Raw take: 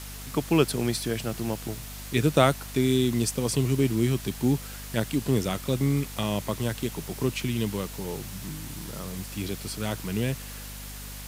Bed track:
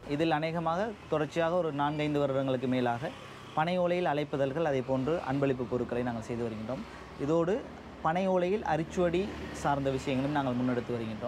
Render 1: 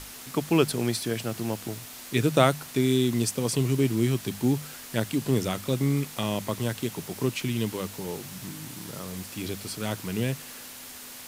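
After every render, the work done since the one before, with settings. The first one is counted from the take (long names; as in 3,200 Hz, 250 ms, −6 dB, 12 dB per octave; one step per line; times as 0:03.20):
mains-hum notches 50/100/150/200 Hz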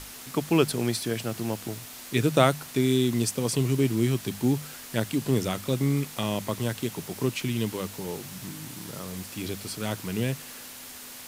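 no processing that can be heard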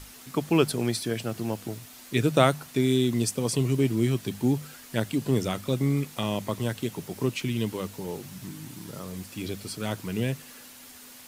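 broadband denoise 6 dB, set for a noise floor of −43 dBFS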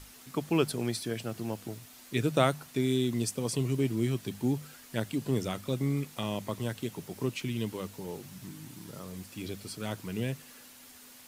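level −5 dB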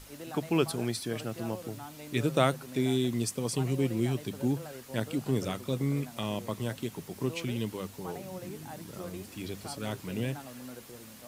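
mix in bed track −15.5 dB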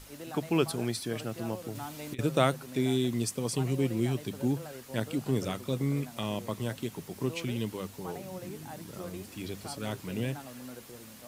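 0:01.75–0:02.19: compressor whose output falls as the input rises −35 dBFS, ratio −0.5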